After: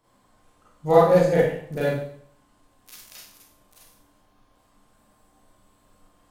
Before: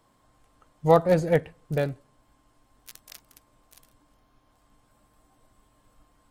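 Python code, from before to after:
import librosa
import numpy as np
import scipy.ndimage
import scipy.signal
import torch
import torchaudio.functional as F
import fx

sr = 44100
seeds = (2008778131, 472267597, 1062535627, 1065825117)

y = fx.rev_schroeder(x, sr, rt60_s=0.6, comb_ms=31, drr_db=-8.5)
y = y * 10.0 ** (-5.5 / 20.0)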